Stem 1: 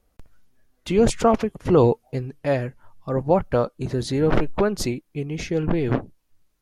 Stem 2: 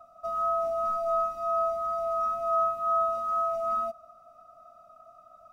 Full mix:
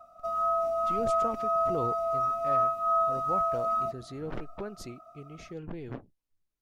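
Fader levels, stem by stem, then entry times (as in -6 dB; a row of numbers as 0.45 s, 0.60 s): -17.5 dB, 0.0 dB; 0.00 s, 0.00 s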